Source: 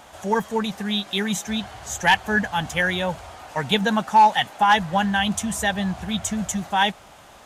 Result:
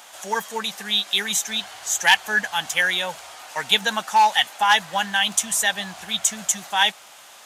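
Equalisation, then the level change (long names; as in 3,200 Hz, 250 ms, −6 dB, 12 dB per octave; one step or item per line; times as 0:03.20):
spectral tilt +4.5 dB per octave
low-shelf EQ 99 Hz −8 dB
high-shelf EQ 7,300 Hz −8 dB
−1.0 dB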